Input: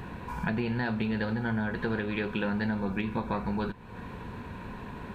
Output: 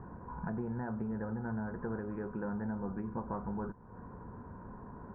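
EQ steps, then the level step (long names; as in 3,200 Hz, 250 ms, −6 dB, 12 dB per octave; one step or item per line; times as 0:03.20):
Butterworth low-pass 1,400 Hz 36 dB per octave
−7.0 dB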